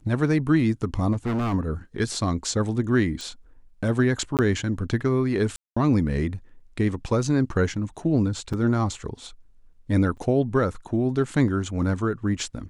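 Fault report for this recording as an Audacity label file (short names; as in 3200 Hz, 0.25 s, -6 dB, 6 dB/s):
1.120000	1.540000	clipped -22.5 dBFS
3.210000	3.210000	pop
4.370000	4.390000	gap 18 ms
5.560000	5.760000	gap 0.205 s
8.530000	8.540000	gap 5.5 ms
10.170000	10.180000	gap 6.3 ms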